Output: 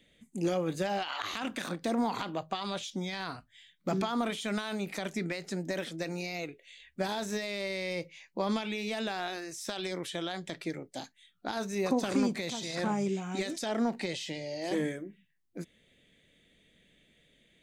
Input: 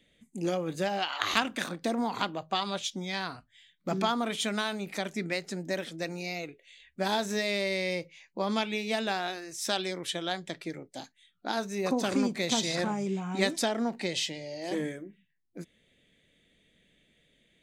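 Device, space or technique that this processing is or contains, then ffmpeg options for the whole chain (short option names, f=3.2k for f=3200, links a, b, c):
de-esser from a sidechain: -filter_complex "[0:a]asplit=2[a][b];[b]highpass=f=5.3k:p=1,apad=whole_len=777342[c];[a][c]sidechaincompress=threshold=-43dB:ratio=6:attack=3.5:release=35,asettb=1/sr,asplit=3[d][e][f];[d]atrim=end=13.084[g];[e]atrim=start=13.08:end=13.66,asetpts=PTS-STARTPTS,afade=t=in:d=0.004:c=qsin,afade=t=out:st=0.576:d=0.004:c=qsin,equalizer=f=160:t=o:w=0.67:g=-6,equalizer=f=1k:t=o:w=0.67:g=-7,equalizer=f=6.3k:t=o:w=0.67:g=4[h];[f]atrim=start=13.656[i];[g][h]acrossfade=d=0.004:c1=hsin:c2=qsin[j];[j][i]acrossfade=d=0.004:c1=qsin:c2=hsin,volume=1.5dB"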